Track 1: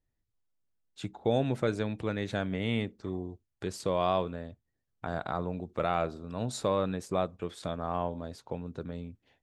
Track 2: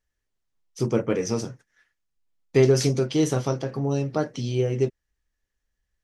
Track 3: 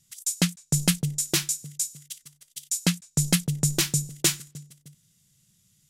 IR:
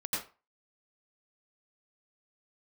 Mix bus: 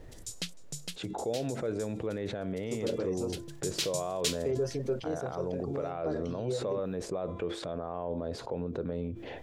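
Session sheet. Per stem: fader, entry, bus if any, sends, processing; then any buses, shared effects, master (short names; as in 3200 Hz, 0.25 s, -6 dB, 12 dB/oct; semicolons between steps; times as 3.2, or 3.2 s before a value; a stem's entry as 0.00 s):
-3.0 dB, 0.00 s, bus A, no send, high shelf 9700 Hz -8 dB; resonator 340 Hz, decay 0.6 s, mix 40%; fast leveller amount 70%
-12.5 dB, 1.90 s, bus A, no send, reverb removal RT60 0.58 s; sustainer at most 95 dB/s
3.37 s -21 dB -> 3.68 s -11 dB, 0.00 s, no bus, no send, bell 3800 Hz +13.5 dB 1.9 oct; auto duck -7 dB, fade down 0.25 s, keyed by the first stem
bus A: 0.0 dB, high shelf 3900 Hz -9 dB; limiter -28.5 dBFS, peak gain reduction 10.5 dB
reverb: off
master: bell 480 Hz +9 dB 1 oct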